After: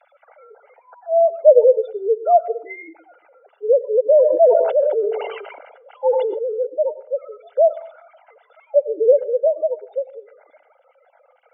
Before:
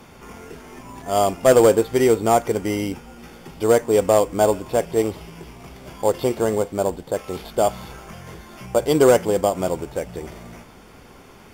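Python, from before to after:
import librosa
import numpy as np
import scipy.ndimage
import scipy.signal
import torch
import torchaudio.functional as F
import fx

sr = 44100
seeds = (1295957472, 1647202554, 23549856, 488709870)

y = fx.sine_speech(x, sr)
y = fx.spec_gate(y, sr, threshold_db=-15, keep='strong')
y = fx.lowpass(y, sr, hz=1700.0, slope=6)
y = y + 0.93 * np.pad(y, (int(1.4 * sr / 1000.0), 0))[:len(y)]
y = fx.rev_plate(y, sr, seeds[0], rt60_s=0.5, hf_ratio=0.6, predelay_ms=75, drr_db=16.0)
y = fx.sustainer(y, sr, db_per_s=40.0, at=(4.14, 6.65), fade=0.02)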